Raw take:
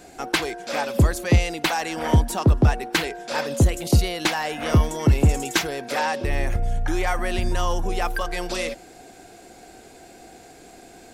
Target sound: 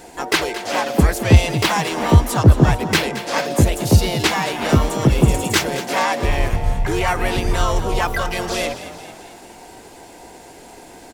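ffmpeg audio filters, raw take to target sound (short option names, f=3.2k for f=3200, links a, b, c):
-filter_complex "[0:a]asplit=2[a][b];[b]asetrate=55563,aresample=44100,atempo=0.793701,volume=-3dB[c];[a][c]amix=inputs=2:normalize=0,asplit=7[d][e][f][g][h][i][j];[e]adelay=222,afreqshift=45,volume=-13dB[k];[f]adelay=444,afreqshift=90,volume=-18.2dB[l];[g]adelay=666,afreqshift=135,volume=-23.4dB[m];[h]adelay=888,afreqshift=180,volume=-28.6dB[n];[i]adelay=1110,afreqshift=225,volume=-33.8dB[o];[j]adelay=1332,afreqshift=270,volume=-39dB[p];[d][k][l][m][n][o][p]amix=inputs=7:normalize=0,volume=3dB"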